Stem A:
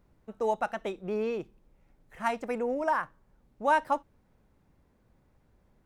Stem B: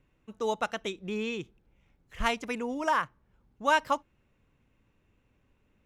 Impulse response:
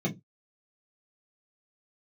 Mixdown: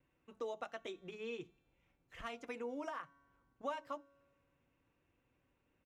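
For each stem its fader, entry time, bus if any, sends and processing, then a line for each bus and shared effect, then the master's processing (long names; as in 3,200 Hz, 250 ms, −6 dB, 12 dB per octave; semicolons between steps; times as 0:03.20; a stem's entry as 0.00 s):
−17.0 dB, 0.00 s, send −8.5 dB, every bin expanded away from the loudest bin 1.5 to 1
+1.0 dB, 1.6 ms, no send, high-shelf EQ 4,200 Hz −7 dB; downward compressor 6 to 1, threshold −36 dBFS, peak gain reduction 15.5 dB; tuned comb filter 140 Hz, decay 1.7 s, mix 40%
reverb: on, pre-delay 3 ms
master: low-shelf EQ 150 Hz −11 dB; notch comb filter 210 Hz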